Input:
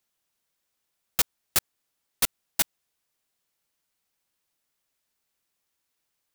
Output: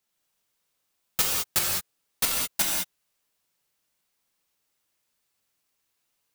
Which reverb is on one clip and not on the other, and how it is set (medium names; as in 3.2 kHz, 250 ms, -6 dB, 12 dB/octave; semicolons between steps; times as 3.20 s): gated-style reverb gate 230 ms flat, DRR -3 dB; trim -2 dB